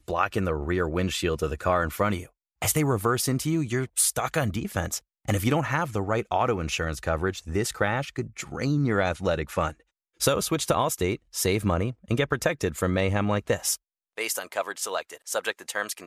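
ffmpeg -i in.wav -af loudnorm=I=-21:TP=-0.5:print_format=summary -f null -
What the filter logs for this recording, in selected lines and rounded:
Input Integrated:    -27.1 LUFS
Input True Peak:      -7.7 dBTP
Input LRA:             2.7 LU
Input Threshold:     -37.2 LUFS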